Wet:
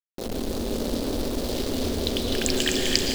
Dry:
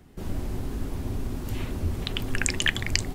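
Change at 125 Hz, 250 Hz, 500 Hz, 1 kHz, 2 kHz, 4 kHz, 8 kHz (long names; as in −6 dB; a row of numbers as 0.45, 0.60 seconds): −3.5, +7.5, +11.5, +4.5, −3.0, +5.5, +3.0 decibels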